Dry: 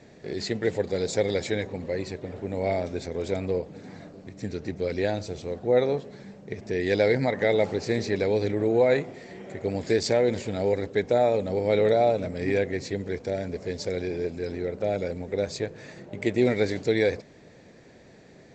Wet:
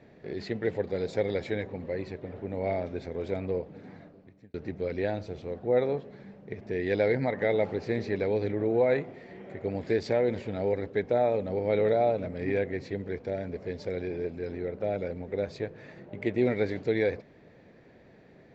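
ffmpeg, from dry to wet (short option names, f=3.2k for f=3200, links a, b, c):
-filter_complex "[0:a]asplit=2[a][b];[a]atrim=end=4.54,asetpts=PTS-STARTPTS,afade=t=out:st=3.86:d=0.68[c];[b]atrim=start=4.54,asetpts=PTS-STARTPTS,afade=t=in:d=0.004:c=hsin[d];[c][d]concat=n=2:v=0:a=1,lowpass=2.9k,volume=-3.5dB"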